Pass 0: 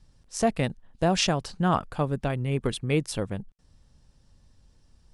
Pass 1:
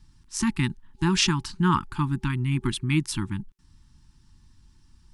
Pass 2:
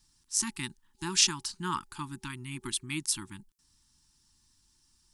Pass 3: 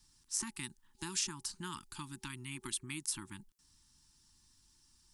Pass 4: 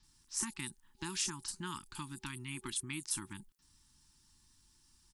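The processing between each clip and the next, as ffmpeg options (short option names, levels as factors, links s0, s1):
-af "afftfilt=real='re*(1-between(b*sr/4096,380,830))':imag='im*(1-between(b*sr/4096,380,830))':win_size=4096:overlap=0.75,volume=1.41"
-af "bass=f=250:g=-10,treble=f=4000:g=14,volume=0.376"
-filter_complex "[0:a]acrossover=split=360|2400|6200[s0][s1][s2][s3];[s0]acompressor=threshold=0.00447:ratio=4[s4];[s1]acompressor=threshold=0.00398:ratio=4[s5];[s2]acompressor=threshold=0.00398:ratio=4[s6];[s3]acompressor=threshold=0.0158:ratio=4[s7];[s4][s5][s6][s7]amix=inputs=4:normalize=0"
-filter_complex "[0:a]acrossover=split=5600[s0][s1];[s1]adelay=30[s2];[s0][s2]amix=inputs=2:normalize=0,volume=1.19"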